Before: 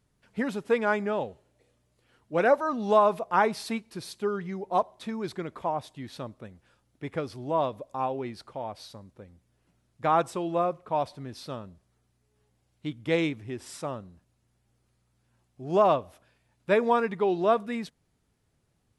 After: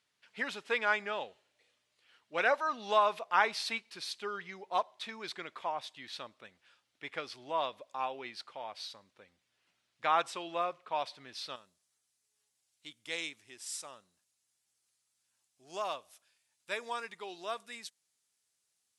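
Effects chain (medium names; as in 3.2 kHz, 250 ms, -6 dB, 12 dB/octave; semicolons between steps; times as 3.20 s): band-pass filter 3.2 kHz, Q 0.93, from 11.56 s 7.7 kHz; trim +5 dB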